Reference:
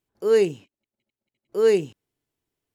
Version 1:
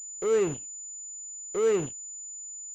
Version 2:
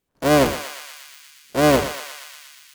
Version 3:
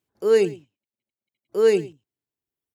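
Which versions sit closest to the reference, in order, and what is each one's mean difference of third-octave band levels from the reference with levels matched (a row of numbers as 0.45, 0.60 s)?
3, 1, 2; 1.5, 6.0, 16.0 dB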